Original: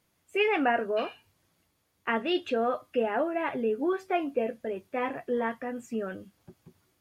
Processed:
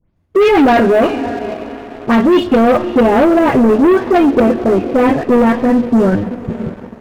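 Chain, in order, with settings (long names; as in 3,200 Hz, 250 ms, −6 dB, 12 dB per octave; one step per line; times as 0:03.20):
every frequency bin delayed by itself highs late, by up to 161 ms
spectral tilt −4.5 dB per octave
on a send: feedback delay with all-pass diffusion 574 ms, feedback 43%, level −16 dB
on the sum: leveller curve on the samples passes 3
convolution reverb RT60 1.2 s, pre-delay 55 ms, DRR 18 dB
in parallel at −2 dB: output level in coarse steps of 10 dB
on the sum: level +3.5 dB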